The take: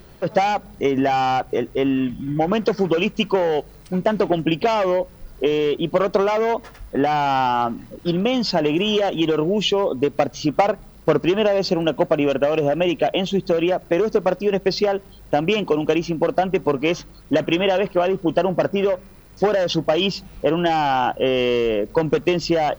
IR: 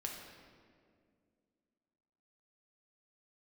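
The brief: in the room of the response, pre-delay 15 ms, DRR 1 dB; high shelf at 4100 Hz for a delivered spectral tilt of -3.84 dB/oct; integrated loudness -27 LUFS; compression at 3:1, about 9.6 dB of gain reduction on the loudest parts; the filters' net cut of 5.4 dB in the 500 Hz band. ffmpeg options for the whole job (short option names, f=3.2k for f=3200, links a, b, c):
-filter_complex "[0:a]equalizer=f=500:t=o:g=-7,highshelf=f=4.1k:g=4,acompressor=threshold=-30dB:ratio=3,asplit=2[a][b];[1:a]atrim=start_sample=2205,adelay=15[c];[b][c]afir=irnorm=-1:irlink=0,volume=-0.5dB[d];[a][d]amix=inputs=2:normalize=0,volume=2dB"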